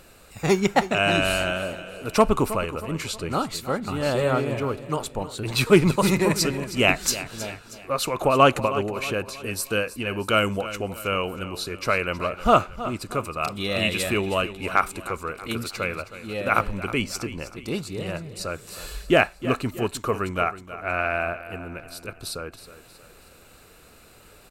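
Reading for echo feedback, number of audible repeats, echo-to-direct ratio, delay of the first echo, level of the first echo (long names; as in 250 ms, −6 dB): 44%, 3, −13.0 dB, 317 ms, −14.0 dB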